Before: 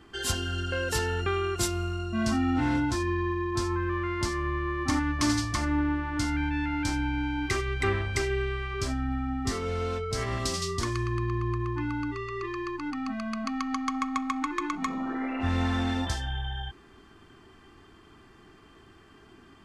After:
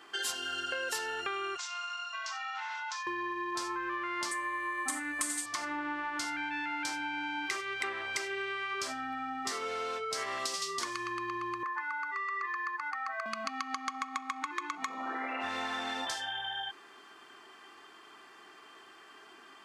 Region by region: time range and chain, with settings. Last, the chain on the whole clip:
1.57–3.07 elliptic band-pass 910–6600 Hz + compressor 12:1, threshold -38 dBFS
4.31–5.46 resonant high shelf 6700 Hz +9 dB, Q 3 + comb 3.9 ms, depth 81%
11.63–13.26 HPF 530 Hz 24 dB/oct + resonant high shelf 2300 Hz -6.5 dB, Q 3
whole clip: HPF 620 Hz 12 dB/oct; compressor, threshold -37 dBFS; gain +4.5 dB

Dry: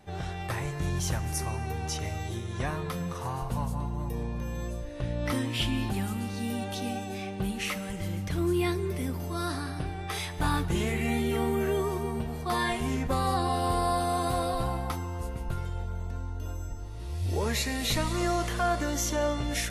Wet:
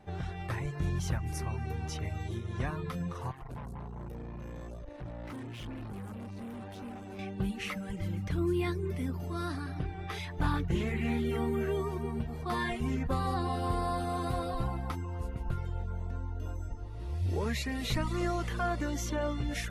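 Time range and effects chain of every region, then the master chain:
3.31–7.19 dynamic EQ 4000 Hz, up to -5 dB, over -48 dBFS, Q 0.7 + tube stage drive 37 dB, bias 0.7
9.74–11.25 bell 8700 Hz -5.5 dB 0.29 oct + Doppler distortion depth 0.16 ms
whole clip: high shelf 3500 Hz -12 dB; reverb removal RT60 0.52 s; dynamic EQ 670 Hz, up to -5 dB, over -45 dBFS, Q 0.89

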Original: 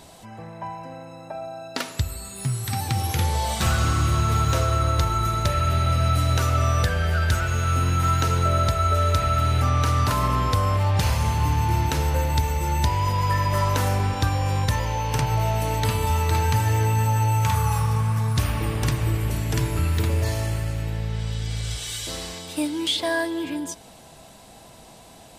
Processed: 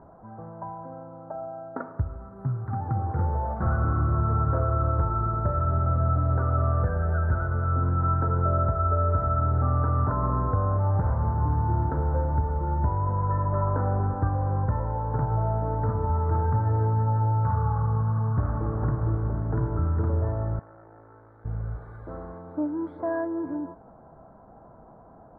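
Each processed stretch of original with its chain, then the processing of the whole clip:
20.59–21.45 HPF 1100 Hz 6 dB/oct + core saturation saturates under 1200 Hz
whole clip: elliptic low-pass 1400 Hz, stop band 50 dB; dynamic EQ 1100 Hz, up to -3 dB, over -35 dBFS, Q 1.8; gain -1.5 dB

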